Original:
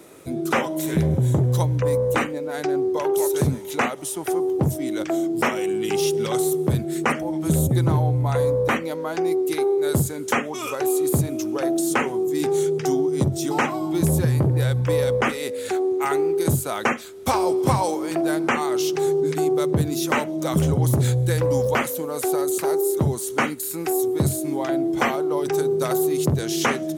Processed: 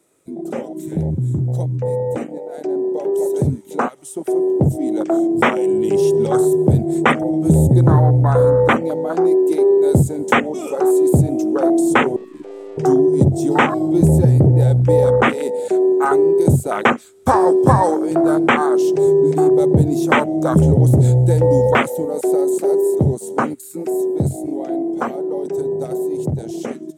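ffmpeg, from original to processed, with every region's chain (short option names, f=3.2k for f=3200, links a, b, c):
-filter_complex "[0:a]asettb=1/sr,asplit=3[a][b][c];[a]atrim=end=12.164[d];[b]atrim=start=12.16:end=12.78,asetpts=PTS-STARTPTS,afade=t=in:d=0.004:c=qsin,afade=t=out:st=0.616:d=0.004:c=qsin,acrossover=split=2900[e][f];[f]acompressor=threshold=-49dB:ratio=4:attack=1:release=60[g];[e][g]amix=inputs=2:normalize=0,aeval=exprs='(tanh(63.1*val(0)+0.3)-tanh(0.3))/63.1':c=same[h];[c]atrim=start=12.776[i];[d][h]acrossfade=d=0.004:c1=hsin:c2=qsin[j];[j][i]acrossfade=d=0.004:c1=qsin:c2=hsin,dynaudnorm=f=380:g=21:m=12dB,afwtdn=0.158,equalizer=f=8.1k:w=2.2:g=9.5"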